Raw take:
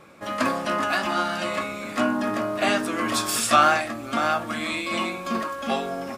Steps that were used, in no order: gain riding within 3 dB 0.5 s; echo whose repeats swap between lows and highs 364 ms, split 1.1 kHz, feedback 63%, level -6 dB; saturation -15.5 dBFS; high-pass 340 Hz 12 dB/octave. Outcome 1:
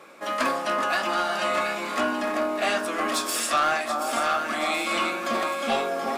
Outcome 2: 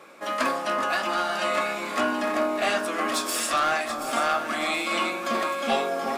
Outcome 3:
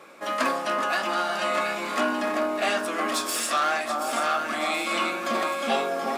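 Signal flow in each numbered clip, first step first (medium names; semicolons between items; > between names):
echo whose repeats swap between lows and highs > gain riding > high-pass > saturation; high-pass > saturation > gain riding > echo whose repeats swap between lows and highs; echo whose repeats swap between lows and highs > saturation > high-pass > gain riding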